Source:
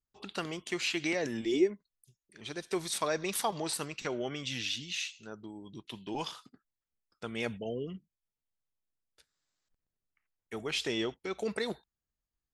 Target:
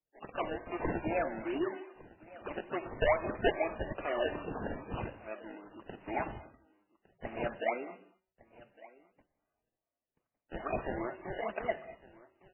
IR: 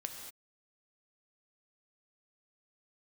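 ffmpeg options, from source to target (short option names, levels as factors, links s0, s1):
-filter_complex "[0:a]lowshelf=f=61:g=-5,aecho=1:1:3.3:0.81,bandreject=f=189.2:t=h:w=4,bandreject=f=378.4:t=h:w=4,bandreject=f=567.6:t=h:w=4,bandreject=f=756.8:t=h:w=4,bandreject=f=946:t=h:w=4,asplit=2[s0][s1];[s1]alimiter=level_in=1.26:limit=0.0631:level=0:latency=1:release=161,volume=0.794,volume=0.75[s2];[s0][s2]amix=inputs=2:normalize=0,acontrast=63,asplit=3[s3][s4][s5];[s3]bandpass=f=730:t=q:w=8,volume=1[s6];[s4]bandpass=f=1090:t=q:w=8,volume=0.501[s7];[s5]bandpass=f=2440:t=q:w=8,volume=0.355[s8];[s6][s7][s8]amix=inputs=3:normalize=0,acrusher=samples=27:mix=1:aa=0.000001:lfo=1:lforange=27:lforate=2.4,asoftclip=type=hard:threshold=0.075,aecho=1:1:1158:0.0891,asplit=2[s9][s10];[1:a]atrim=start_sample=2205[s11];[s10][s11]afir=irnorm=-1:irlink=0,volume=0.501[s12];[s9][s12]amix=inputs=2:normalize=0" -ar 8000 -c:a libmp3lame -b:a 8k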